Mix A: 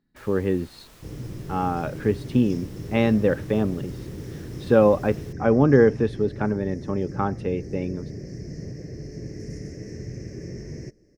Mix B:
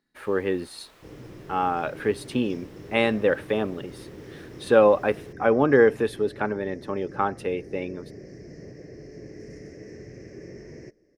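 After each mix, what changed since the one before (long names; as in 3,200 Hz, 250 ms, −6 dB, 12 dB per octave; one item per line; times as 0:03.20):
speech: remove head-to-tape spacing loss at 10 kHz 26 dB
master: add bass and treble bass −12 dB, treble −10 dB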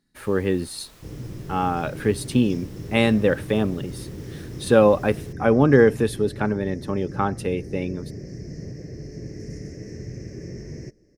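master: add bass and treble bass +12 dB, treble +10 dB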